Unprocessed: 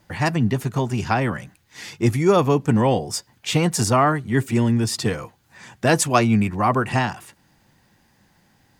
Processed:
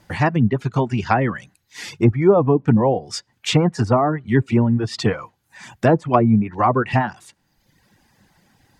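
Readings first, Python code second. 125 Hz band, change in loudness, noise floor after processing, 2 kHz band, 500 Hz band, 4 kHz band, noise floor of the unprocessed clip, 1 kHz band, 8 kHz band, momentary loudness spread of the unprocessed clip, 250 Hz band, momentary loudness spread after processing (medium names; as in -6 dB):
+2.0 dB, +2.0 dB, -67 dBFS, -1.0 dB, +2.5 dB, -1.0 dB, -61 dBFS, +1.0 dB, -9.5 dB, 10 LU, +2.5 dB, 10 LU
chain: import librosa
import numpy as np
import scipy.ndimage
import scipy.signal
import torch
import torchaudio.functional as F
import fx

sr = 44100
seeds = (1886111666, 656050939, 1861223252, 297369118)

y = fx.env_lowpass_down(x, sr, base_hz=780.0, full_db=-13.0)
y = fx.dereverb_blind(y, sr, rt60_s=0.97)
y = y * librosa.db_to_amplitude(4.0)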